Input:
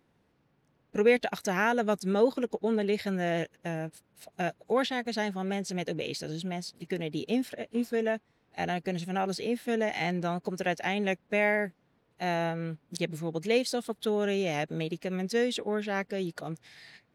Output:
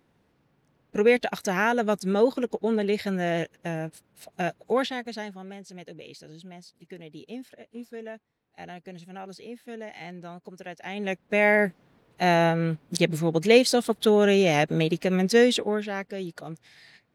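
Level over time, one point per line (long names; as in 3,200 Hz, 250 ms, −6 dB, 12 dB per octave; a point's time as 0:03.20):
0:04.74 +3 dB
0:05.55 −10 dB
0:10.77 −10 dB
0:11.03 −1 dB
0:11.67 +9 dB
0:15.50 +9 dB
0:15.97 −1 dB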